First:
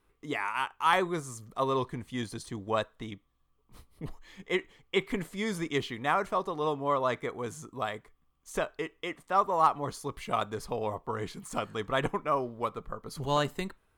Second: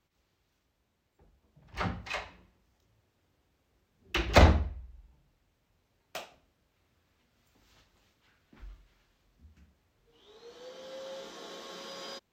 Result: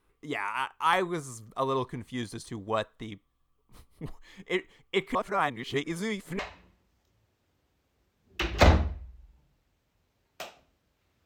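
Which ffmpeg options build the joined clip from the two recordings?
ffmpeg -i cue0.wav -i cue1.wav -filter_complex "[0:a]apad=whole_dur=11.25,atrim=end=11.25,asplit=2[link_01][link_02];[link_01]atrim=end=5.152[link_03];[link_02]atrim=start=5.148:end=6.392,asetpts=PTS-STARTPTS,areverse[link_04];[1:a]atrim=start=2.138:end=7[link_05];[link_03][link_04]acrossfade=duration=0.004:curve1=hsin:curve2=hsin[link_06];[link_06][link_05]acrossfade=duration=0.004:curve1=hsin:curve2=hsin" out.wav

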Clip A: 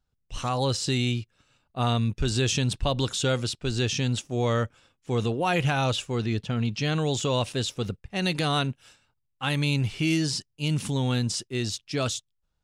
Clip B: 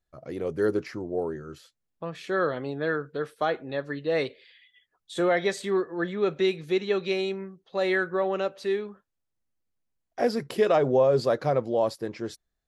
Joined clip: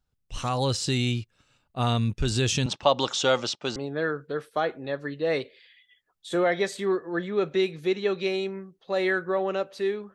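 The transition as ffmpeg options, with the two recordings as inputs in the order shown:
ffmpeg -i cue0.wav -i cue1.wav -filter_complex "[0:a]asettb=1/sr,asplit=3[link_01][link_02][link_03];[link_01]atrim=end=2.664[link_04];[link_02]atrim=start=2.66:end=3.76,asetpts=PTS-STARTPTS,afade=type=in:duration=0.004:curve=qsin,afade=type=out:start_time=1.096:duration=0.004:curve=qsin,highpass=240,equalizer=frequency=590:width_type=q:width=4:gain=8,equalizer=frequency=850:width_type=q:width=4:gain=10,equalizer=frequency=1200:width_type=q:width=4:gain=8,equalizer=frequency=2000:width_type=q:width=4:gain=3,equalizer=frequency=3200:width_type=q:width=4:gain=4,equalizer=frequency=5800:width_type=q:width=4:gain=5,lowpass=frequency=6900:width=0.5412,lowpass=frequency=6900:width=1.3066[link_05];[link_03]atrim=start=3.756[link_06];[link_04][link_05]acrossfade=duration=0.004:curve1=hsin:curve2=qsin[link_07];[link_07][link_06]acrossfade=duration=0.004:curve1=qsin:curve2=hsin,apad=whole_dur=10.14,atrim=end=10.14,atrim=end=3.762[link_08];[1:a]atrim=start=2.608:end=8.99[link_09];[link_08][link_09]acrossfade=duration=0.004:curve1=hsin:curve2=hsin" out.wav

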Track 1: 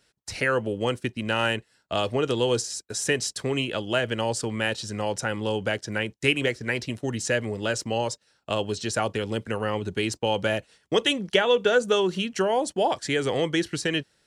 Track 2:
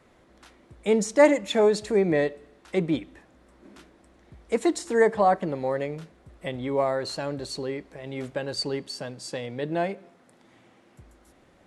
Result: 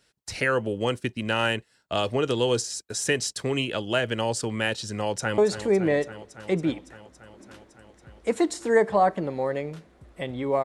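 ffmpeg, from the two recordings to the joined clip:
ffmpeg -i cue0.wav -i cue1.wav -filter_complex "[0:a]apad=whole_dur=10.64,atrim=end=10.64,atrim=end=5.382[link_01];[1:a]atrim=start=1.628:end=6.89[link_02];[link_01][link_02]acrossfade=duration=0.004:curve1=hsin:curve2=hsin,asplit=2[link_03][link_04];[link_04]afade=type=in:start_time=4.96:duration=0.01,afade=type=out:start_time=5.38:duration=0.01,aecho=0:1:280|560|840|1120|1400|1680|1960|2240|2520|2800|3080|3360:0.251189|0.200951|0.160761|0.128609|0.102887|0.0823095|0.0658476|0.0526781|0.0421425|0.033714|0.0269712|0.0215769[link_05];[link_03][link_05]amix=inputs=2:normalize=0" out.wav

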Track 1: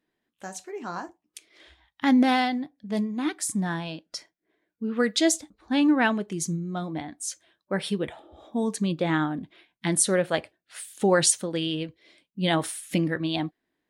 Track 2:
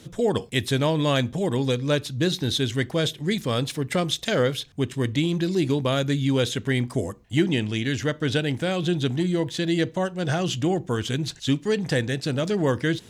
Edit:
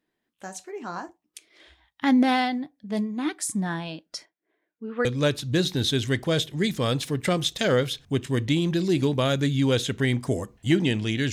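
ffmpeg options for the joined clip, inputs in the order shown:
ffmpeg -i cue0.wav -i cue1.wav -filter_complex "[0:a]asettb=1/sr,asplit=3[link_01][link_02][link_03];[link_01]atrim=end=4.254[link_04];[link_02]atrim=start=4.25:end=5.05,asetpts=PTS-STARTPTS,afade=type=in:duration=0.004:curve=qsin,afade=type=out:start_time=0.796:duration=0.004:curve=qsin,bass=frequency=250:gain=-11,treble=frequency=4000:gain=-12[link_05];[link_03]atrim=start=5.046[link_06];[link_04][link_05]acrossfade=duration=0.004:curve1=hsin:curve2=qsin[link_07];[link_07][link_06]acrossfade=duration=0.004:curve1=qsin:curve2=hsin,apad=whole_dur=11.32,atrim=end=11.32,atrim=end=5.052[link_08];[1:a]atrim=start=1.718:end=7.99[link_09];[link_08][link_09]acrossfade=duration=0.004:curve1=hsin:curve2=hsin" out.wav

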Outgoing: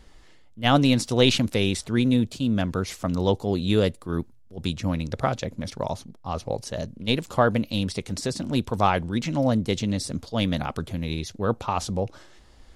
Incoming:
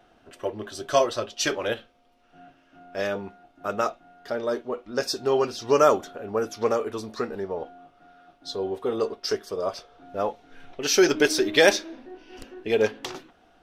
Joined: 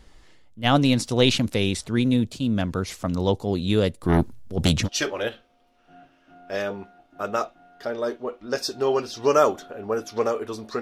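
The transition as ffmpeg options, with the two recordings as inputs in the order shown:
ffmpeg -i cue0.wav -i cue1.wav -filter_complex "[0:a]asettb=1/sr,asplit=3[link_01][link_02][link_03];[link_01]atrim=end=4.034[link_04];[link_02]atrim=start=4.03:end=4.89,asetpts=PTS-STARTPTS,afade=type=in:duration=0.004:curve=qsin,afade=type=out:start_time=0.856:duration=0.004:curve=qsin,aeval=exprs='0.251*sin(PI/2*2.51*val(0)/0.251)':channel_layout=same[link_05];[link_03]atrim=start=4.886[link_06];[link_04][link_05]acrossfade=duration=0.004:curve1=hsin:curve2=qsin[link_07];[link_07][link_06]acrossfade=duration=0.004:curve1=qsin:curve2=hsin,apad=whole_dur=10.81,atrim=end=10.81,atrim=end=4.89,asetpts=PTS-STARTPTS[link_08];[1:a]atrim=start=1.26:end=7.26,asetpts=PTS-STARTPTS[link_09];[link_08][link_09]acrossfade=duration=0.08:curve1=tri:curve2=tri" out.wav

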